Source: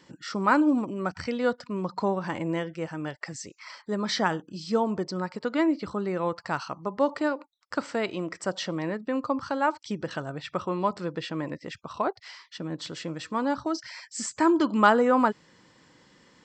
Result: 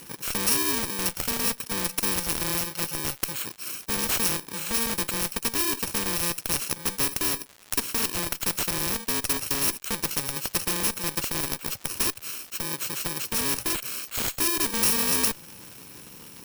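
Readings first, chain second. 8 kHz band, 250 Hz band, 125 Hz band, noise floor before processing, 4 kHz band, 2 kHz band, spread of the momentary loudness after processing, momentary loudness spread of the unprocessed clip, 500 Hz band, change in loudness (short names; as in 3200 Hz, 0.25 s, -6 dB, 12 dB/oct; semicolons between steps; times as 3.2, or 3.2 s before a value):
+17.0 dB, -7.5 dB, -1.0 dB, -64 dBFS, +9.0 dB, +0.5 dB, 8 LU, 13 LU, -8.0 dB, +3.0 dB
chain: FFT order left unsorted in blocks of 64 samples; in parallel at -5 dB: Schmitt trigger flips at -26 dBFS; on the sum: crackle 230/s -46 dBFS; spectral compressor 2:1; gain -2 dB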